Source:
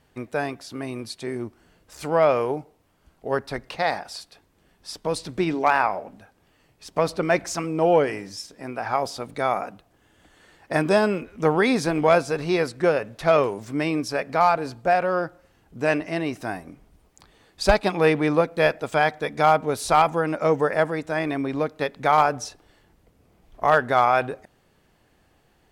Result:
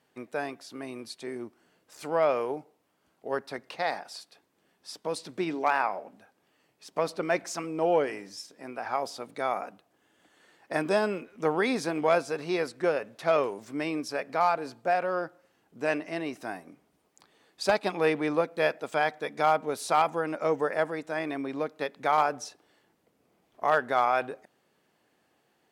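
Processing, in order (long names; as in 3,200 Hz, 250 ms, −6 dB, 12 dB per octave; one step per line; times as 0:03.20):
high-pass filter 210 Hz 12 dB per octave
level −6 dB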